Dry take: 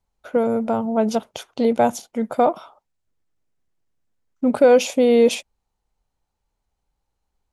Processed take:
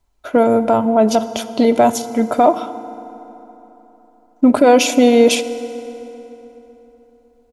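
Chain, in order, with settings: comb 3 ms, depth 46%; limiter -11.5 dBFS, peak gain reduction 6.5 dB; FDN reverb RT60 3.7 s, high-frequency decay 0.6×, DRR 12.5 dB; gain +8 dB

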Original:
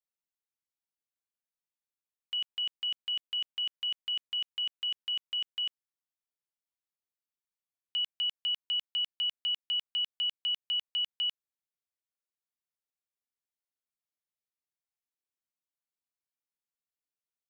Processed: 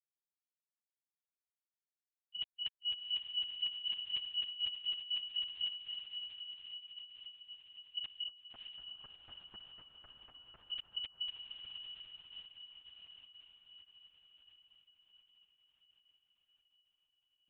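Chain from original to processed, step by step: gate -31 dBFS, range -40 dB; 8.27–10.57 elliptic band-pass 150–1400 Hz, stop band 50 dB; negative-ratio compressor -35 dBFS, ratio -0.5; diffused feedback echo 0.635 s, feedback 66%, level -6 dB; LPC vocoder at 8 kHz whisper

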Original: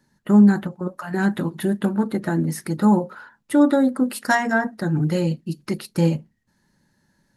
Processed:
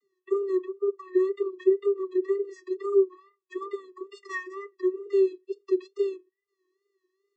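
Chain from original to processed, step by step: vocoder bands 32, square 384 Hz; wow and flutter 79 cents; gain -6.5 dB

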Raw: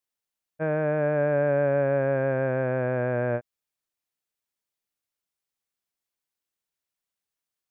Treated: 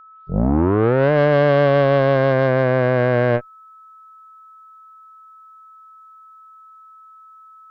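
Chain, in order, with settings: tape start at the beginning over 1.12 s; added harmonics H 4 -15 dB, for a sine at -14.5 dBFS; whine 1300 Hz -50 dBFS; gain +7.5 dB

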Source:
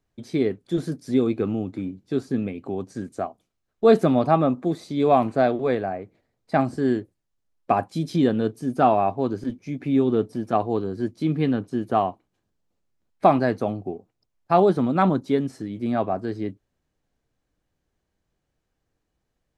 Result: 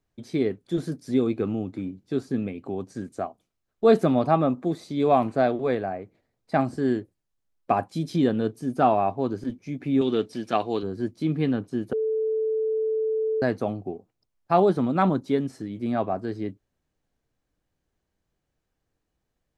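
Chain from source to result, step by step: 10.01–10.83 weighting filter D; 11.93–13.42 bleep 439 Hz -20 dBFS; gain -2 dB

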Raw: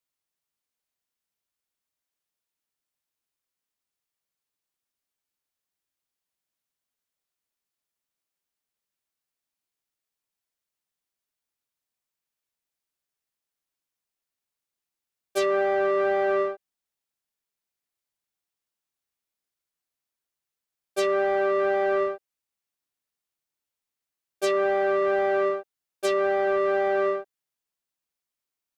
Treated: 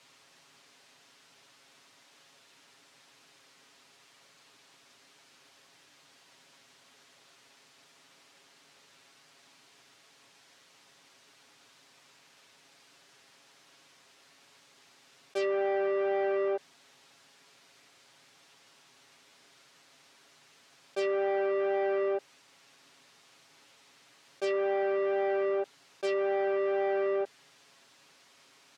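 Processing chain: BPF 150–5300 Hz; comb 7.3 ms, depth 55%; fast leveller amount 100%; gain -8.5 dB

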